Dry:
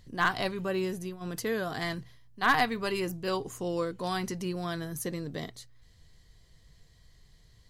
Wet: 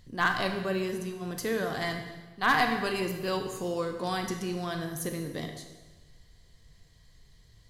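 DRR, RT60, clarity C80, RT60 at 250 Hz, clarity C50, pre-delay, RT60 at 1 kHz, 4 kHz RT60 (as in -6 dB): 5.0 dB, 1.2 s, 8.5 dB, 1.4 s, 6.5 dB, 23 ms, 1.2 s, 1.2 s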